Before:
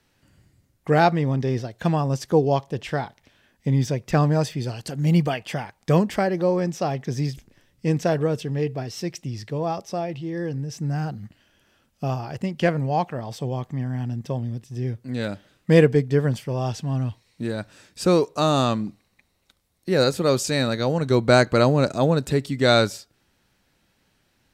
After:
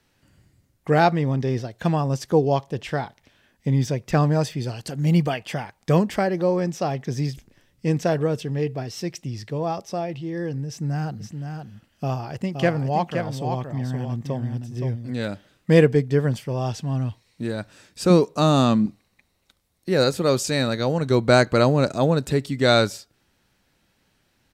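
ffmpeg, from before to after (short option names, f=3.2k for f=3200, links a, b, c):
-filter_complex "[0:a]asplit=3[a][b][c];[a]afade=t=out:st=11.19:d=0.02[d];[b]aecho=1:1:520:0.473,afade=t=in:st=11.19:d=0.02,afade=t=out:st=15.11:d=0.02[e];[c]afade=t=in:st=15.11:d=0.02[f];[d][e][f]amix=inputs=3:normalize=0,asettb=1/sr,asplit=3[g][h][i];[g]atrim=end=18.104[j];[h]atrim=start=18.1:end=18.86,asetpts=PTS-STARTPTS,afade=t=in:d=0.004:c=qsin,afade=t=out:st=0.756:d=0.004:c=qsin,equalizer=f=200:w=1.5:g=8.5[k];[i]atrim=start=18.856[l];[j][k]acrossfade=d=0.004:c1=hsin:c2=qsin[m];[m][l]acrossfade=d=0.004:c1=qsin:c2=hsin"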